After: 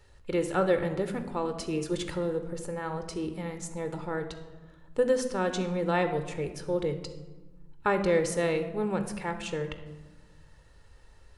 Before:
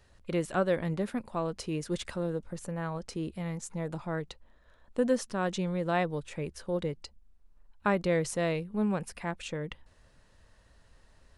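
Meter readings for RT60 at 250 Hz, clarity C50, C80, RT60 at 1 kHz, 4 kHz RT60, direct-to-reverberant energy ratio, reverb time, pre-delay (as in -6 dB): 1.7 s, 10.0 dB, 12.0 dB, 1.2 s, 0.70 s, 8.0 dB, 1.2 s, 21 ms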